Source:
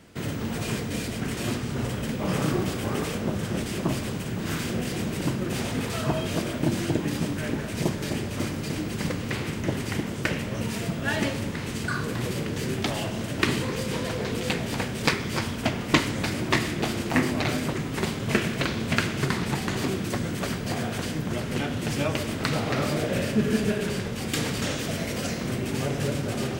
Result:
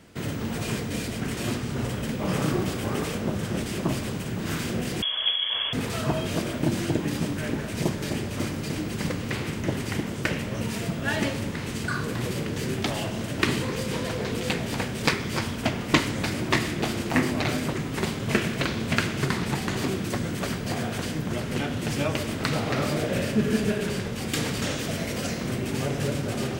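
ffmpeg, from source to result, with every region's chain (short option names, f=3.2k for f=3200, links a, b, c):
-filter_complex "[0:a]asettb=1/sr,asplit=3[a][b][c];[a]atrim=end=5.024[d];[b]atrim=start=5.02:end=5.73,asetpts=PTS-STARTPTS,afade=t=in:d=0.004:c=qsin,afade=t=out:st=0.706:d=0.004:c=qsin,lowpass=f=3k:t=q:w=0.5098,lowpass=f=3k:t=q:w=0.6013,lowpass=f=3k:t=q:w=0.9,lowpass=f=3k:t=q:w=2.563,afreqshift=-3500,aecho=1:1:1.8:0.36,atrim=end_sample=31311[e];[c]atrim=start=5.726[f];[d][e]acrossfade=d=0.004:c1=hsin:c2=qsin[g];[g][f]acrossfade=d=0.004:c1=qsin:c2=hsin"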